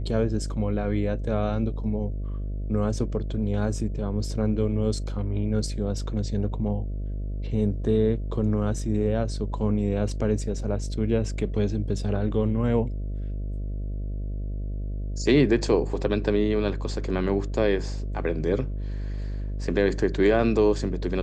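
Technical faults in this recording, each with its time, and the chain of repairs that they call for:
mains buzz 50 Hz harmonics 13 −30 dBFS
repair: hum removal 50 Hz, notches 13

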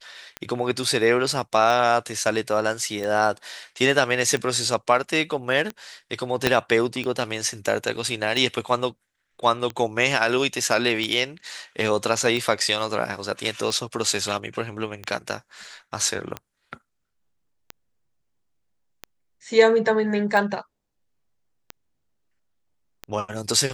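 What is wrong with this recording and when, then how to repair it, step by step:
scratch tick 45 rpm −15 dBFS
0:06.47: click −3 dBFS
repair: click removal

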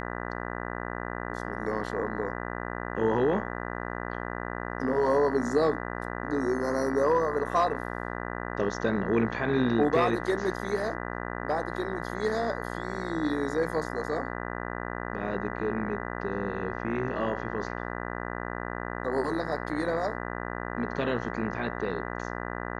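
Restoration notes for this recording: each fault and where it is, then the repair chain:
mains buzz 60 Hz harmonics 33 −35 dBFS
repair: hum removal 60 Hz, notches 33

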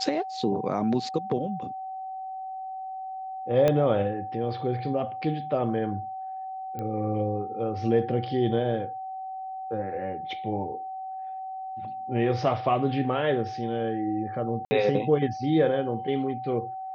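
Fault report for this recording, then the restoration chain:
whistle 760 Hz −33 dBFS
0:03.68: click −11 dBFS
0:06.79: click −22 dBFS
0:14.65–0:14.71: drop-out 60 ms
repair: click removal
notch filter 760 Hz, Q 30
repair the gap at 0:14.65, 60 ms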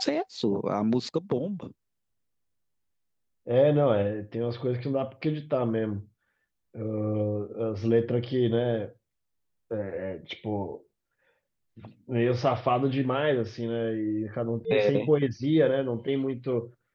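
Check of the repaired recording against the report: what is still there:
0:03.68: click

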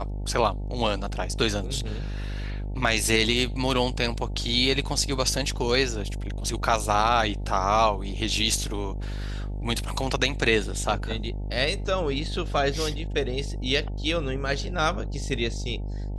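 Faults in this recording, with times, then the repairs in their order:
mains buzz 50 Hz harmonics 18 −31 dBFS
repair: hum removal 50 Hz, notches 18

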